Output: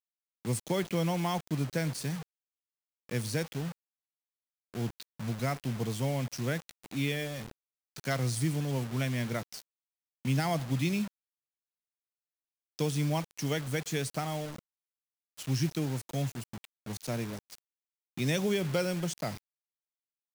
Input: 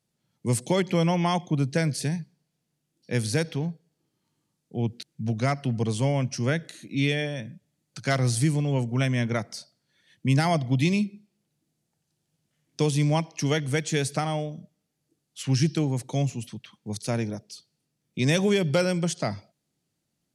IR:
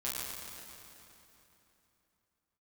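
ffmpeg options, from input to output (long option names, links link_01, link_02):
-af "acrusher=bits=5:mix=0:aa=0.000001,volume=-7dB"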